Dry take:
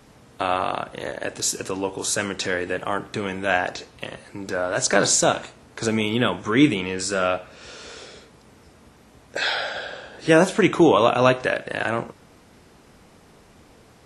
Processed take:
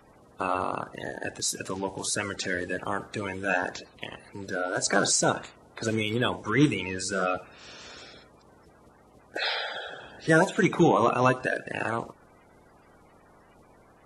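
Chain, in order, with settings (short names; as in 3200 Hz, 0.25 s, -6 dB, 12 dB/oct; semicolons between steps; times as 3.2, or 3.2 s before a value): bin magnitudes rounded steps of 30 dB; gain -4.5 dB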